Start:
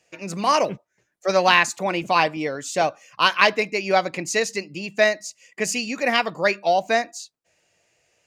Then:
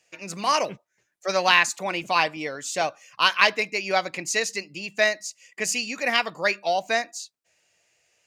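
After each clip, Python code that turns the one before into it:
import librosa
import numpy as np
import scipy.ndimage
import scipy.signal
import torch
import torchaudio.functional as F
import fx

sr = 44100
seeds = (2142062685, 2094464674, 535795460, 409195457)

y = fx.tilt_shelf(x, sr, db=-4.0, hz=940.0)
y = y * 10.0 ** (-3.5 / 20.0)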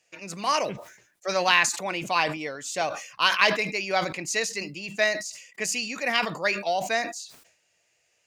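y = fx.sustainer(x, sr, db_per_s=87.0)
y = y * 10.0 ** (-2.5 / 20.0)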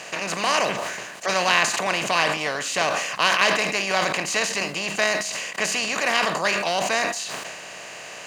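y = fx.bin_compress(x, sr, power=0.4)
y = y * 10.0 ** (-3.0 / 20.0)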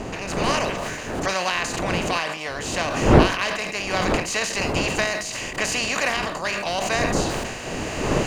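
y = fx.recorder_agc(x, sr, target_db=-5.5, rise_db_per_s=7.3, max_gain_db=30)
y = fx.dmg_wind(y, sr, seeds[0], corner_hz=530.0, level_db=-20.0)
y = y * 10.0 ** (-6.0 / 20.0)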